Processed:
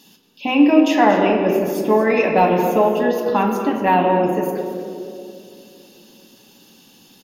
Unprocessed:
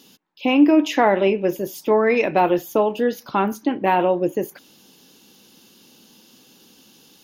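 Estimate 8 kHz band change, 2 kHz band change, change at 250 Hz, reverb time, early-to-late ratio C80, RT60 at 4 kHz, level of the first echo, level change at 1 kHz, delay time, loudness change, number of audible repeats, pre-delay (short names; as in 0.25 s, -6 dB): n/a, +2.5 dB, +3.0 dB, 2.5 s, 4.5 dB, 1.1 s, -12.0 dB, +4.0 dB, 0.231 s, +2.5 dB, 1, 5 ms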